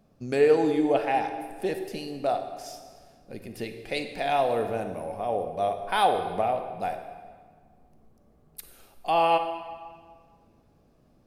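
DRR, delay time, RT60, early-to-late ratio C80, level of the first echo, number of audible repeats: 7.0 dB, no echo audible, 1.7 s, 9.5 dB, no echo audible, no echo audible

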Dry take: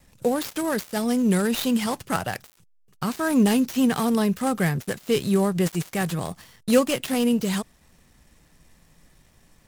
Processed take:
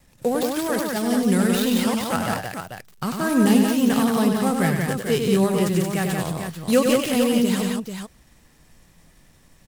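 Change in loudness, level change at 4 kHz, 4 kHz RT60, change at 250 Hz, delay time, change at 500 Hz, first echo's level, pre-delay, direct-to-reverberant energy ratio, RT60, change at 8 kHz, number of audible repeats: +2.5 dB, +3.0 dB, no reverb audible, +2.5 dB, 98 ms, +3.0 dB, −5.5 dB, no reverb audible, no reverb audible, no reverb audible, +3.0 dB, 3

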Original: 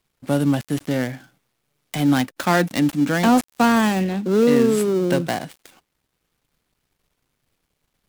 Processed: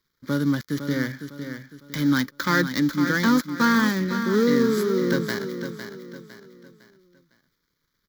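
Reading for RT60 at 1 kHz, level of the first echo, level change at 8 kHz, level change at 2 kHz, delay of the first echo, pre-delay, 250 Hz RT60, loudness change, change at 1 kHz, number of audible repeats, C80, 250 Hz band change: no reverb audible, −9.0 dB, −4.5 dB, +1.0 dB, 506 ms, no reverb audible, no reverb audible, −3.0 dB, −5.0 dB, 4, no reverb audible, −2.5 dB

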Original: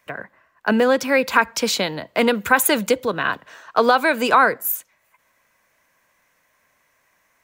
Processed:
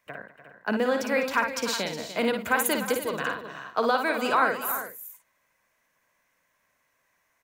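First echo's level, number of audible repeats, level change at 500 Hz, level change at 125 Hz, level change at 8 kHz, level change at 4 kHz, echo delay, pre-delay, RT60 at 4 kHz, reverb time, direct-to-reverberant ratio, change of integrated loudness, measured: −6.0 dB, 5, −7.5 dB, −8.0 dB, −7.5 dB, −7.5 dB, 56 ms, no reverb audible, no reverb audible, no reverb audible, no reverb audible, −7.5 dB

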